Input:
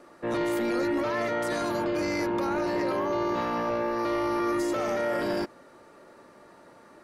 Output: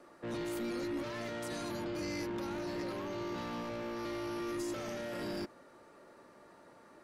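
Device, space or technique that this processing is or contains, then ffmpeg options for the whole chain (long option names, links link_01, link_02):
one-band saturation: -filter_complex "[0:a]acrossover=split=290|2900[link_01][link_02][link_03];[link_02]asoftclip=type=tanh:threshold=-36.5dB[link_04];[link_01][link_04][link_03]amix=inputs=3:normalize=0,volume=-5.5dB"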